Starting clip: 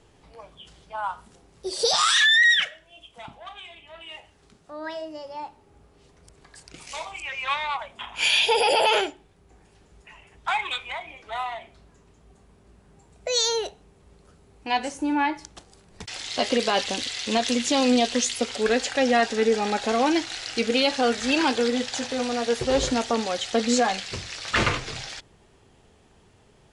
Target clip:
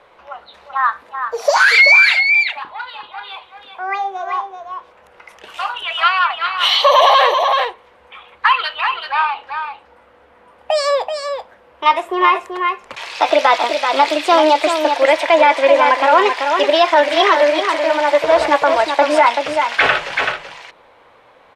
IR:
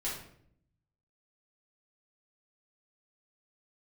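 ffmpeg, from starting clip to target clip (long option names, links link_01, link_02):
-filter_complex "[0:a]asetrate=54684,aresample=44100,acrossover=split=490 2900:gain=0.0794 1 0.0631[link_01][link_02][link_03];[link_01][link_02][link_03]amix=inputs=3:normalize=0,bandreject=frequency=50:width_type=h:width=6,bandreject=frequency=100:width_type=h:width=6,bandreject=frequency=150:width_type=h:width=6,asplit=2[link_04][link_05];[link_05]aecho=0:1:383:0.447[link_06];[link_04][link_06]amix=inputs=2:normalize=0,alimiter=level_in=15.5dB:limit=-1dB:release=50:level=0:latency=1,volume=-1dB"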